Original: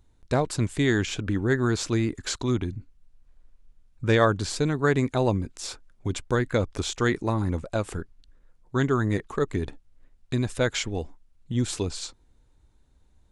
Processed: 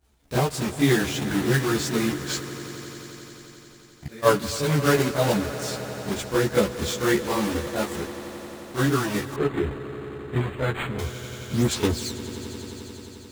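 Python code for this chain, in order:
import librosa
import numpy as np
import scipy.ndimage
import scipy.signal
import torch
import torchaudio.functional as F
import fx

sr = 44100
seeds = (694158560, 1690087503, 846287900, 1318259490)

y = fx.block_float(x, sr, bits=3)
y = scipy.signal.sosfilt(scipy.signal.butter(2, 51.0, 'highpass', fs=sr, output='sos'), y)
y = fx.hum_notches(y, sr, base_hz=50, count=2)
y = fx.gate_flip(y, sr, shuts_db=-26.0, range_db=-24, at=(2.4, 4.22), fade=0.02)
y = fx.chorus_voices(y, sr, voices=4, hz=0.96, base_ms=28, depth_ms=3.5, mix_pct=70)
y = fx.doubler(y, sr, ms=14.0, db=-4)
y = fx.echo_swell(y, sr, ms=88, loudest=5, wet_db=-18.0)
y = fx.resample_linear(y, sr, factor=8, at=(9.36, 10.99))
y = y * librosa.db_to_amplitude(2.0)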